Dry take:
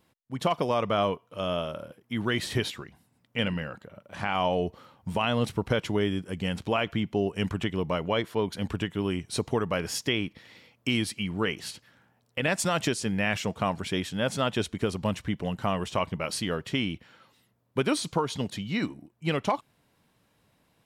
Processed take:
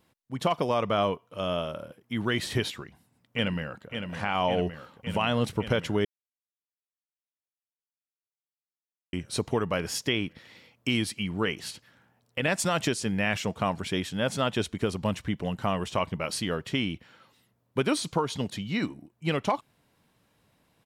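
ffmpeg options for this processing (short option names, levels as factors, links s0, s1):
-filter_complex "[0:a]asplit=2[s0][s1];[s1]afade=t=in:st=2.8:d=0.01,afade=t=out:st=3.89:d=0.01,aecho=0:1:560|1120|1680|2240|2800|3360|3920|4480|5040|5600|6160|6720:0.446684|0.357347|0.285877|0.228702|0.182962|0.146369|0.117095|0.0936763|0.0749411|0.0599529|0.0479623|0.0383698[s2];[s0][s2]amix=inputs=2:normalize=0,asplit=3[s3][s4][s5];[s3]atrim=end=6.05,asetpts=PTS-STARTPTS,afade=t=out:st=6.046:d=0.004:c=hsin[s6];[s4]atrim=start=6.05:end=9.13,asetpts=PTS-STARTPTS,volume=0[s7];[s5]atrim=start=9.13,asetpts=PTS-STARTPTS,afade=t=in:d=0.004:c=hsin[s8];[s6][s7][s8]concat=n=3:v=0:a=1"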